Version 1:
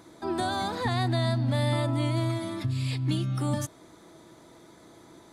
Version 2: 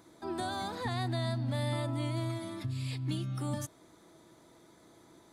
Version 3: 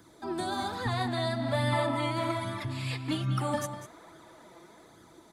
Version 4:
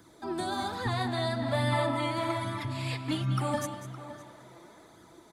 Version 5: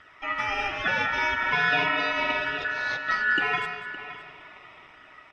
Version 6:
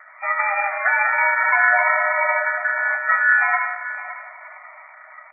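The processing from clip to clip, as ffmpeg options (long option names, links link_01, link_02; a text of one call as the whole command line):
ffmpeg -i in.wav -af "highshelf=frequency=10000:gain=4.5,volume=-7dB" out.wav
ffmpeg -i in.wav -filter_complex "[0:a]asplit=2[link_01][link_02];[link_02]adelay=198.3,volume=-9dB,highshelf=frequency=4000:gain=-4.46[link_03];[link_01][link_03]amix=inputs=2:normalize=0,flanger=delay=0.6:depth=5.3:regen=34:speed=1.2:shape=sinusoidal,acrossover=split=270|490|2700[link_04][link_05][link_06][link_07];[link_06]dynaudnorm=framelen=240:gausssize=11:maxgain=9dB[link_08];[link_04][link_05][link_08][link_07]amix=inputs=4:normalize=0,volume=6.5dB" out.wav
ffmpeg -i in.wav -filter_complex "[0:a]asplit=2[link_01][link_02];[link_02]adelay=564,lowpass=frequency=3300:poles=1,volume=-13.5dB,asplit=2[link_03][link_04];[link_04]adelay=564,lowpass=frequency=3300:poles=1,volume=0.16[link_05];[link_01][link_03][link_05]amix=inputs=3:normalize=0" out.wav
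ffmpeg -i in.wav -af "lowpass=2300,aeval=exprs='val(0)*sin(2*PI*1600*n/s)':channel_layout=same,bandreject=frequency=84.22:width_type=h:width=4,bandreject=frequency=168.44:width_type=h:width=4,bandreject=frequency=252.66:width_type=h:width=4,bandreject=frequency=336.88:width_type=h:width=4,bandreject=frequency=421.1:width_type=h:width=4,bandreject=frequency=505.32:width_type=h:width=4,bandreject=frequency=589.54:width_type=h:width=4,bandreject=frequency=673.76:width_type=h:width=4,bandreject=frequency=757.98:width_type=h:width=4,bandreject=frequency=842.2:width_type=h:width=4,bandreject=frequency=926.42:width_type=h:width=4,bandreject=frequency=1010.64:width_type=h:width=4,bandreject=frequency=1094.86:width_type=h:width=4,bandreject=frequency=1179.08:width_type=h:width=4,bandreject=frequency=1263.3:width_type=h:width=4,bandreject=frequency=1347.52:width_type=h:width=4,bandreject=frequency=1431.74:width_type=h:width=4,bandreject=frequency=1515.96:width_type=h:width=4,bandreject=frequency=1600.18:width_type=h:width=4,bandreject=frequency=1684.4:width_type=h:width=4,bandreject=frequency=1768.62:width_type=h:width=4,bandreject=frequency=1852.84:width_type=h:width=4,bandreject=frequency=1937.06:width_type=h:width=4,bandreject=frequency=2021.28:width_type=h:width=4,bandreject=frequency=2105.5:width_type=h:width=4,bandreject=frequency=2189.72:width_type=h:width=4,bandreject=frequency=2273.94:width_type=h:width=4,bandreject=frequency=2358.16:width_type=h:width=4,bandreject=frequency=2442.38:width_type=h:width=4,bandreject=frequency=2526.6:width_type=h:width=4,bandreject=frequency=2610.82:width_type=h:width=4,bandreject=frequency=2695.04:width_type=h:width=4,bandreject=frequency=2779.26:width_type=h:width=4,bandreject=frequency=2863.48:width_type=h:width=4,bandreject=frequency=2947.7:width_type=h:width=4,bandreject=frequency=3031.92:width_type=h:width=4,bandreject=frequency=3116.14:width_type=h:width=4,bandreject=frequency=3200.36:width_type=h:width=4,volume=8dB" out.wav
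ffmpeg -i in.wav -af "afftfilt=real='re*between(b*sr/4096,580,2400)':imag='im*between(b*sr/4096,580,2400)':win_size=4096:overlap=0.75,volume=8dB" out.wav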